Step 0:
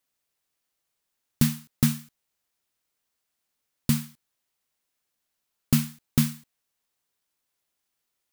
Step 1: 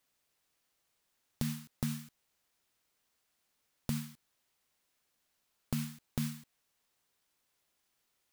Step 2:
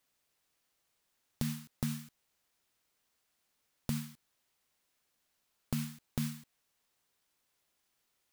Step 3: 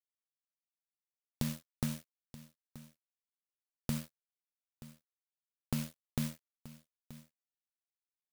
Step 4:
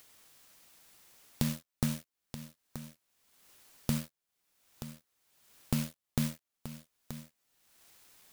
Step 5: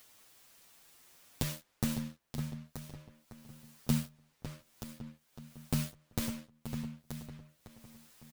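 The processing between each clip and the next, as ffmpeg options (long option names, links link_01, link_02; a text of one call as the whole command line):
ffmpeg -i in.wav -af "highshelf=frequency=7600:gain=-4,alimiter=limit=-18dB:level=0:latency=1:release=71,acompressor=threshold=-38dB:ratio=3,volume=3.5dB" out.wav
ffmpeg -i in.wav -af anull out.wav
ffmpeg -i in.wav -af "aeval=exprs='sgn(val(0))*max(abs(val(0))-0.00596,0)':channel_layout=same,aecho=1:1:929:0.141,volume=1.5dB" out.wav
ffmpeg -i in.wav -af "acompressor=mode=upward:threshold=-39dB:ratio=2.5,volume=4dB" out.wav
ffmpeg -i in.wav -filter_complex "[0:a]asplit=2[link_01][link_02];[link_02]adelay=555,lowpass=frequency=3100:poles=1,volume=-7.5dB,asplit=2[link_03][link_04];[link_04]adelay=555,lowpass=frequency=3100:poles=1,volume=0.44,asplit=2[link_05][link_06];[link_06]adelay=555,lowpass=frequency=3100:poles=1,volume=0.44,asplit=2[link_07][link_08];[link_08]adelay=555,lowpass=frequency=3100:poles=1,volume=0.44,asplit=2[link_09][link_10];[link_10]adelay=555,lowpass=frequency=3100:poles=1,volume=0.44[link_11];[link_01][link_03][link_05][link_07][link_09][link_11]amix=inputs=6:normalize=0,asplit=2[link_12][link_13];[link_13]adelay=7.8,afreqshift=0.66[link_14];[link_12][link_14]amix=inputs=2:normalize=1,volume=2.5dB" out.wav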